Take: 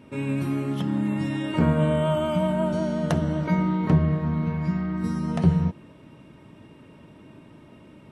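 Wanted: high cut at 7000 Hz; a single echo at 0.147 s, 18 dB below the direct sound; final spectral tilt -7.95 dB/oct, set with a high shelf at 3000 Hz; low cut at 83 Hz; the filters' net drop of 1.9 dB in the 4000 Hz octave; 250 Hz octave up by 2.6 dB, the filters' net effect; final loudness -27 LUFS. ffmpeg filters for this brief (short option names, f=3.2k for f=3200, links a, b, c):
-af "highpass=83,lowpass=7k,equalizer=f=250:t=o:g=4,highshelf=f=3k:g=3.5,equalizer=f=4k:t=o:g=-5.5,aecho=1:1:147:0.126,volume=-4.5dB"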